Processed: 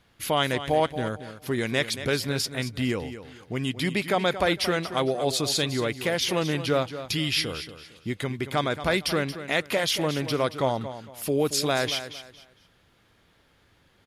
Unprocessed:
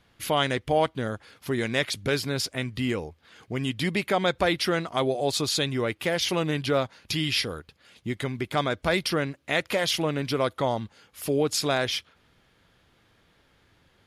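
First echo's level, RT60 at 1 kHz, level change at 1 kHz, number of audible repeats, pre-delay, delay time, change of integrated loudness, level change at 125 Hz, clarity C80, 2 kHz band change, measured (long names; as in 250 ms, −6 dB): −12.0 dB, no reverb audible, +0.5 dB, 3, no reverb audible, 228 ms, +0.5 dB, +0.5 dB, no reverb audible, +0.5 dB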